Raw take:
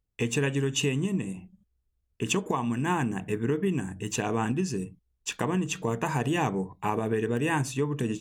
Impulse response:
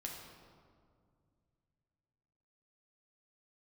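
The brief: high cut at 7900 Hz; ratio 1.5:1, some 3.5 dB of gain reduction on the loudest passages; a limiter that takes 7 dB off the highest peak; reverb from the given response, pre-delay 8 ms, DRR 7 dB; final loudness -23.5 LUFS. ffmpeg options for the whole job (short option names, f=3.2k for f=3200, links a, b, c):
-filter_complex "[0:a]lowpass=7.9k,acompressor=threshold=-32dB:ratio=1.5,alimiter=limit=-22dB:level=0:latency=1,asplit=2[a][b];[1:a]atrim=start_sample=2205,adelay=8[c];[b][c]afir=irnorm=-1:irlink=0,volume=-5dB[d];[a][d]amix=inputs=2:normalize=0,volume=9dB"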